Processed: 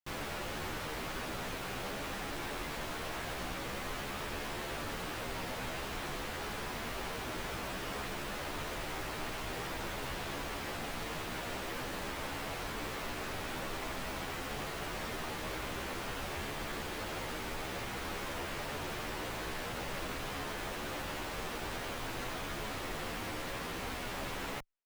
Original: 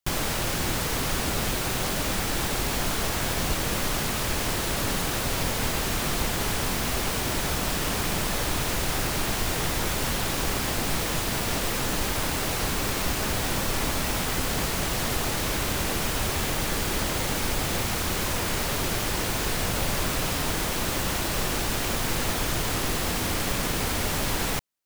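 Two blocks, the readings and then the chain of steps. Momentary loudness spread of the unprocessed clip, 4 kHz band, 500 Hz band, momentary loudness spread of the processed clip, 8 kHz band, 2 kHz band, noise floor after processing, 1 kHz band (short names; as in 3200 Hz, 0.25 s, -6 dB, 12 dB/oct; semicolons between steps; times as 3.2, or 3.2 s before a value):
0 LU, -13.0 dB, -10.0 dB, 0 LU, -18.0 dB, -10.0 dB, -41 dBFS, -9.5 dB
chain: tone controls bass -6 dB, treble -11 dB; wavefolder -25.5 dBFS; endless flanger 11.8 ms +0.49 Hz; gain -5 dB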